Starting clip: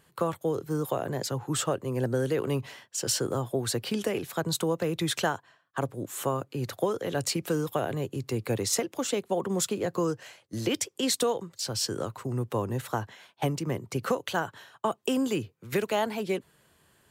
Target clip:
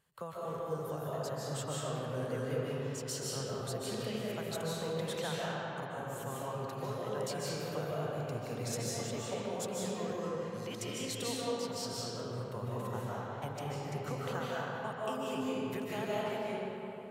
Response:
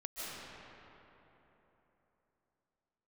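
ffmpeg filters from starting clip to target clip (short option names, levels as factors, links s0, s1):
-filter_complex "[0:a]equalizer=f=320:w=4.5:g=-12[s0];[1:a]atrim=start_sample=2205[s1];[s0][s1]afir=irnorm=-1:irlink=0,volume=0.398"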